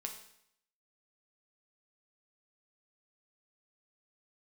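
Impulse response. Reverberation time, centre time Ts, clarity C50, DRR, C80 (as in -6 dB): 0.70 s, 21 ms, 7.5 dB, 2.5 dB, 10.5 dB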